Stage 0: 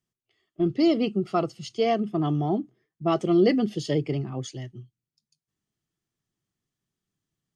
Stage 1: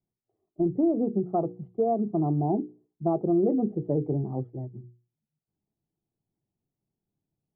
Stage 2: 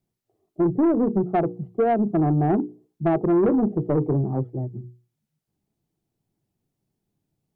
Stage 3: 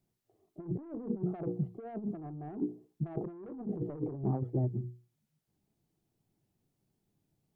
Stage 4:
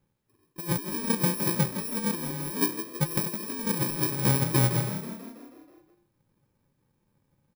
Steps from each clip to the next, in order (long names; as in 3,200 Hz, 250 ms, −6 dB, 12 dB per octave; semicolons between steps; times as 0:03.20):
Chebyshev low-pass filter 870 Hz, order 4; mains-hum notches 60/120/180/240/300/360/420/480 Hz; downward compressor 2.5 to 1, threshold −24 dBFS, peak gain reduction 5.5 dB; level +2 dB
tape wow and flutter 22 cents; soft clipping −21.5 dBFS, distortion −15 dB; level +7.5 dB
compressor whose output falls as the input rises −27 dBFS, ratio −0.5; level −7.5 dB
samples in bit-reversed order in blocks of 64 samples; echo with shifted repeats 162 ms, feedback 61%, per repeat +32 Hz, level −10 dB; one half of a high-frequency compander decoder only; level +8 dB